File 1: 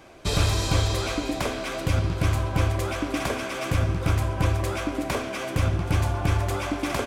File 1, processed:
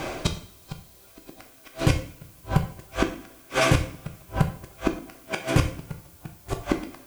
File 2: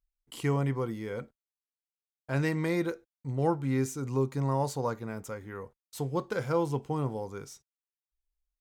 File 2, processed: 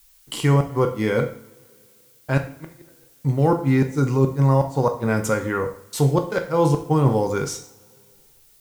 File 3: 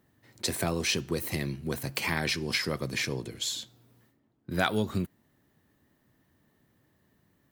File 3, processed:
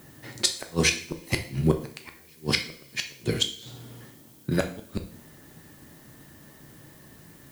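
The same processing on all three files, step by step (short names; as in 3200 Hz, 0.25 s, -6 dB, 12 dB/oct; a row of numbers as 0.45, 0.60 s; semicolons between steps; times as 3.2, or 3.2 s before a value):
LPF 12000 Hz 12 dB/oct; reverse; compressor 5:1, threshold -32 dBFS; reverse; flipped gate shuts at -25 dBFS, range -41 dB; two-slope reverb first 0.48 s, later 2.5 s, from -26 dB, DRR 4.5 dB; added noise blue -72 dBFS; normalise peaks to -6 dBFS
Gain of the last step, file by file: +17.5, +16.5, +16.0 dB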